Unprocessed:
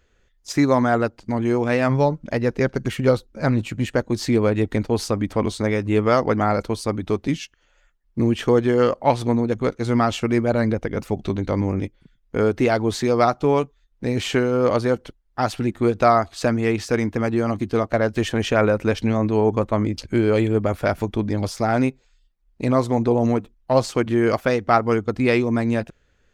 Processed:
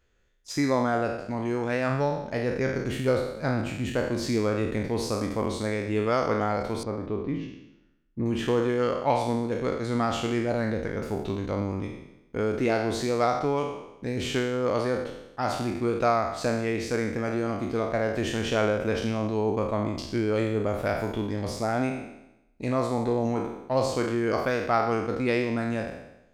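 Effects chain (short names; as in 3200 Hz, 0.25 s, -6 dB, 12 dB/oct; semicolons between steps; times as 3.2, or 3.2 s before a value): spectral trails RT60 0.88 s; 6.83–8.26 tape spacing loss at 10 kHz 34 dB; gain -8.5 dB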